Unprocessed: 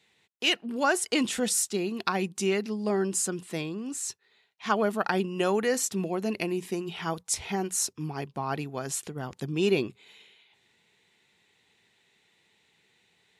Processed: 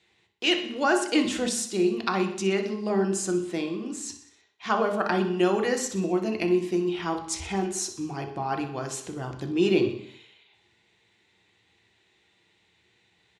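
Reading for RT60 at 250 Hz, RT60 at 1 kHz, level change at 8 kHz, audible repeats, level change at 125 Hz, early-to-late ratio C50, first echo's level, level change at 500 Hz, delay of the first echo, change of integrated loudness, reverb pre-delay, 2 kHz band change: 0.75 s, 0.60 s, -3.0 dB, 5, +1.5 dB, 8.0 dB, -13.0 dB, +3.0 dB, 62 ms, +2.0 dB, 3 ms, +1.0 dB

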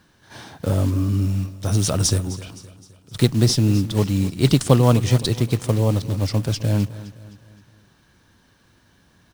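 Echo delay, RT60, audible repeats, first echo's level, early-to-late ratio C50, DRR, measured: 259 ms, no reverb, 3, -16.5 dB, no reverb, no reverb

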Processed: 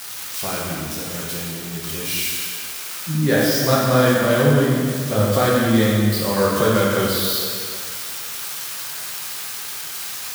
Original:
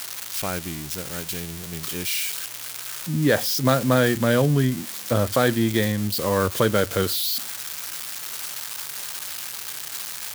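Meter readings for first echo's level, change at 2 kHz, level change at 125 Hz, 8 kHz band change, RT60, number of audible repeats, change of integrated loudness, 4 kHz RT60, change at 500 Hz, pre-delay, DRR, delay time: no echo, +3.5 dB, +3.5 dB, +3.0 dB, 2.1 s, no echo, +3.5 dB, 1.8 s, +4.0 dB, 3 ms, -6.0 dB, no echo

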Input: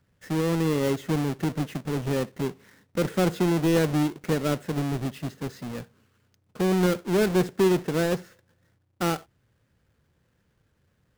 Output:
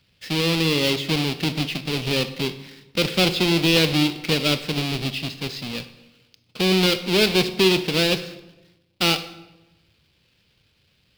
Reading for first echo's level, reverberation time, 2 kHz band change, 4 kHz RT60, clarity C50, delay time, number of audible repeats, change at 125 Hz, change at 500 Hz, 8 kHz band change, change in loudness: no echo, 1.0 s, +10.0 dB, 0.75 s, 13.5 dB, no echo, no echo, +2.0 dB, +2.0 dB, +7.0 dB, +5.0 dB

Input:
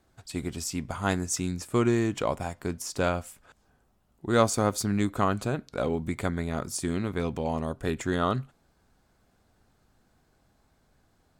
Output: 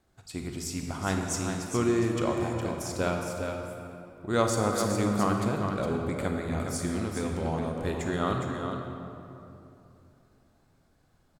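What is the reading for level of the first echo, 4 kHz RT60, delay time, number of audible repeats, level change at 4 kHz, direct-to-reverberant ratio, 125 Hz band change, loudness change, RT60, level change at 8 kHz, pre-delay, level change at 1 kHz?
-7.0 dB, 1.6 s, 412 ms, 1, -1.5 dB, 1.0 dB, -0.5 dB, -1.0 dB, 2.9 s, -1.5 dB, 30 ms, -0.5 dB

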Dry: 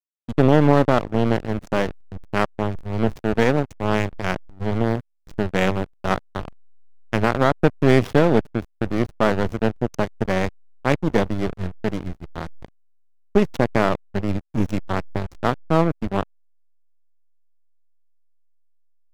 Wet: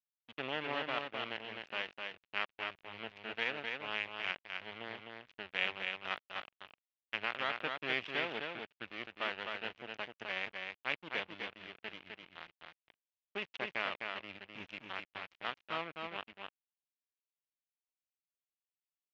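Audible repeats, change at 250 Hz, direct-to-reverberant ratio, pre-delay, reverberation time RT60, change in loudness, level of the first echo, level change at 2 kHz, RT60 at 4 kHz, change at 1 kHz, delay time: 1, -29.5 dB, no reverb, no reverb, no reverb, -17.5 dB, -4.5 dB, -8.5 dB, no reverb, -17.5 dB, 256 ms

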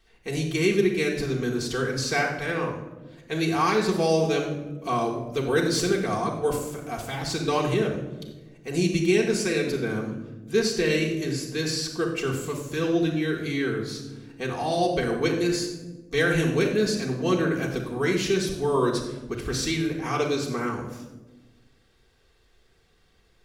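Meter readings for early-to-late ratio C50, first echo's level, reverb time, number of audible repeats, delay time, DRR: 6.0 dB, no echo, 1.2 s, no echo, no echo, -2.5 dB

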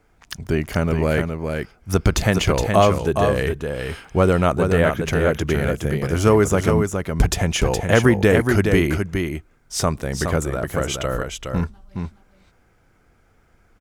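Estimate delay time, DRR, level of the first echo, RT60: 417 ms, no reverb, -5.5 dB, no reverb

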